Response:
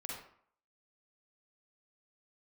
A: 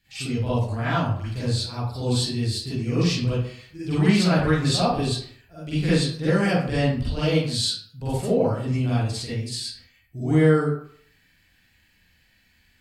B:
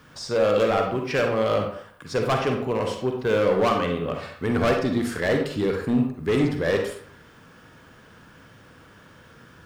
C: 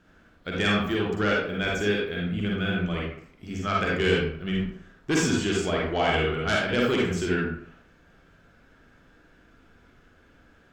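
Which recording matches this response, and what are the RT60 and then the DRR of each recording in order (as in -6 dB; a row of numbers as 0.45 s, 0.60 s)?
C; 0.60 s, 0.60 s, 0.60 s; -12.5 dB, 2.5 dB, -3.5 dB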